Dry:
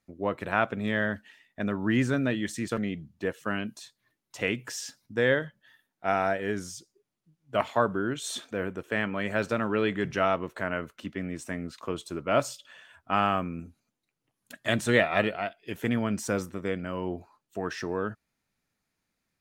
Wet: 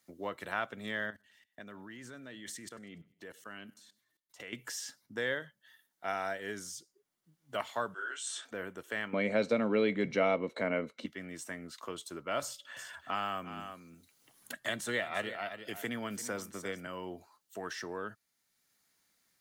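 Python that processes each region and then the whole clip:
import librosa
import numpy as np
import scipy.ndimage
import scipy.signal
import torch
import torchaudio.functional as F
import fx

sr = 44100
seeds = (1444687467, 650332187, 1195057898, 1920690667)

y = fx.chain(x, sr, fx.level_steps(step_db=21),
    fx.echo_feedback(ms=97, feedback_pct=48, wet_db=-24.0), at=(1.1, 4.53))
y = fx.chain(y, sr, fx.cabinet(low_hz=470.0, low_slope=24, high_hz=9600.0, hz=(560.0, 1500.0, 2700.0, 5300.0, 7900.0), db=(-3, 8, 6, 5, 9)),
    fx.detune_double(cents=44), at=(7.94, 8.45))
y = fx.chain(y, sr, fx.air_absorb(metres=61.0),
    fx.small_body(hz=(240.0, 480.0, 2200.0, 3900.0), ring_ms=20, db=17), at=(9.13, 11.06))
y = fx.chain(y, sr, fx.echo_single(ms=344, db=-15.5),
    fx.band_squash(depth_pct=40), at=(12.42, 16.87))
y = fx.tilt_eq(y, sr, slope=2.5)
y = fx.notch(y, sr, hz=2500.0, q=9.4)
y = fx.band_squash(y, sr, depth_pct=40)
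y = y * librosa.db_to_amplitude(-8.5)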